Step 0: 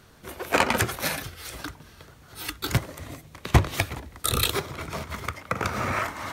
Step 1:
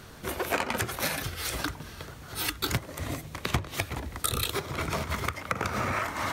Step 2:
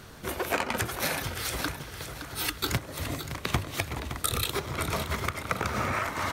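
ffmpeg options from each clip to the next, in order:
-af "acompressor=threshold=-33dB:ratio=6,volume=6.5dB"
-af "aecho=1:1:566|1132|1698|2264:0.316|0.123|0.0481|0.0188"

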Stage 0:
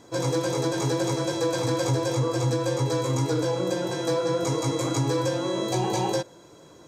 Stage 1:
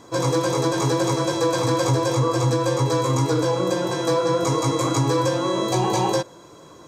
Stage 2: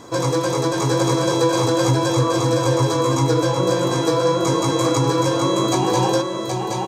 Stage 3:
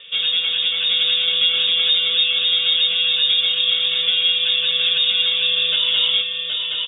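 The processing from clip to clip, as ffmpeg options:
-af "equalizer=f=1.1k:w=4.9:g=8,volume=4dB"
-filter_complex "[0:a]asplit=2[a][b];[b]acompressor=threshold=-30dB:ratio=6,volume=2dB[c];[a][c]amix=inputs=2:normalize=0,aecho=1:1:772:0.631,volume=-1.5dB"
-af "lowpass=f=3.2k:t=q:w=0.5098,lowpass=f=3.2k:t=q:w=0.6013,lowpass=f=3.2k:t=q:w=0.9,lowpass=f=3.2k:t=q:w=2.563,afreqshift=-3800"

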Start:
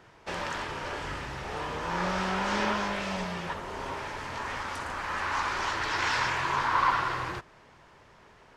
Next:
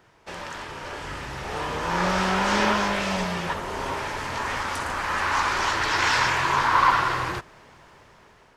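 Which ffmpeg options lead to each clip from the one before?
-af "highshelf=f=9.4k:g=8,dynaudnorm=f=530:g=5:m=9dB,volume=-2.5dB"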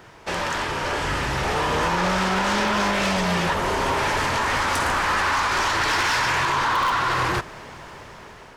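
-filter_complex "[0:a]asplit=2[a][b];[b]aeval=exprs='(mod(3.16*val(0)+1,2)-1)/3.16':c=same,volume=-4dB[c];[a][c]amix=inputs=2:normalize=0,alimiter=limit=-16dB:level=0:latency=1:release=145,asoftclip=type=tanh:threshold=-24dB,volume=7dB"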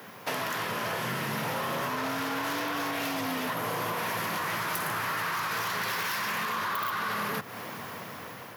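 -af "afreqshift=83,aexciter=amount=11.6:drive=3.8:freq=11k,acompressor=threshold=-29dB:ratio=6"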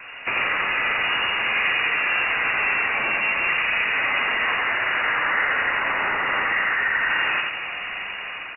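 -filter_complex "[0:a]asplit=2[a][b];[b]aecho=0:1:86|172|258|344|430|516:0.708|0.319|0.143|0.0645|0.029|0.0131[c];[a][c]amix=inputs=2:normalize=0,lowpass=f=2.6k:t=q:w=0.5098,lowpass=f=2.6k:t=q:w=0.6013,lowpass=f=2.6k:t=q:w=0.9,lowpass=f=2.6k:t=q:w=2.563,afreqshift=-3000,volume=7.5dB" -ar 32000 -c:a libvorbis -b:a 48k

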